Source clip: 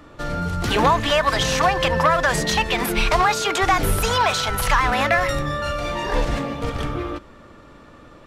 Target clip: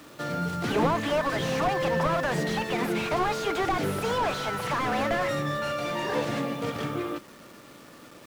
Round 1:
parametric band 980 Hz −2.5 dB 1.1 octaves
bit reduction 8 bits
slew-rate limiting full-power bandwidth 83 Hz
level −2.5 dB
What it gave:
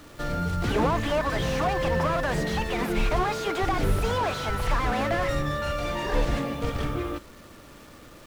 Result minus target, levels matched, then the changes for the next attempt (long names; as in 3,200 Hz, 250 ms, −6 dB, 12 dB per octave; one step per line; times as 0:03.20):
125 Hz band +3.5 dB
add first: high-pass filter 130 Hz 24 dB per octave